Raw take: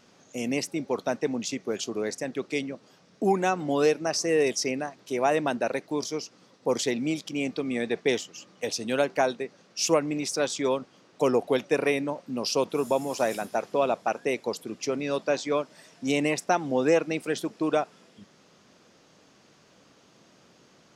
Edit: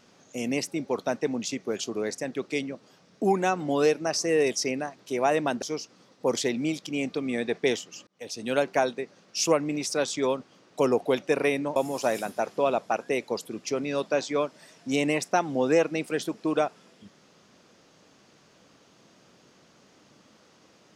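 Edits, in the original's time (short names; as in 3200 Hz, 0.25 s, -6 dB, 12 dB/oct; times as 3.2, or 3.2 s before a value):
5.62–6.04 cut
8.49–8.98 fade in
12.18–12.92 cut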